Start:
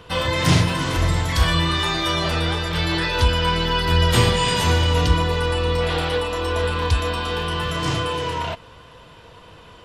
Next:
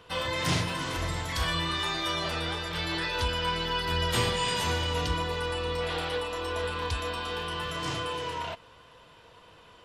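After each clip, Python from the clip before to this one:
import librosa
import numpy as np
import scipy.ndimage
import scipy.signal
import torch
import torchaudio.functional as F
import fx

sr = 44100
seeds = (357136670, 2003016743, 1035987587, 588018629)

y = fx.low_shelf(x, sr, hz=260.0, db=-7.0)
y = y * librosa.db_to_amplitude(-7.5)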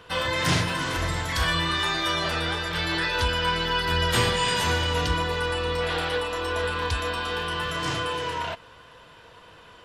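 y = fx.peak_eq(x, sr, hz=1600.0, db=4.5, octaves=0.45)
y = y * librosa.db_to_amplitude(4.0)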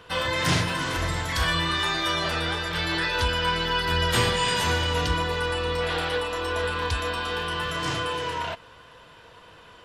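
y = x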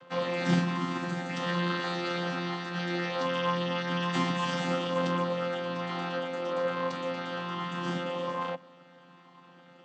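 y = fx.chord_vocoder(x, sr, chord='bare fifth', root=53)
y = y * librosa.db_to_amplitude(-3.5)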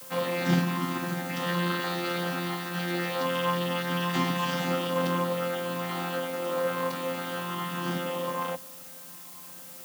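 y = fx.dmg_noise_colour(x, sr, seeds[0], colour='blue', level_db=-47.0)
y = y * librosa.db_to_amplitude(1.5)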